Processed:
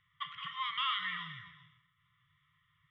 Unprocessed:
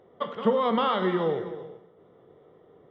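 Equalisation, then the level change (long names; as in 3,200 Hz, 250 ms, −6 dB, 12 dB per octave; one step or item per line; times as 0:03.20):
linear-phase brick-wall band-stop 160–1,000 Hz
flat-topped bell 2,500 Hz +11 dB 1.1 octaves
notch filter 1,600 Hz, Q 14
−8.5 dB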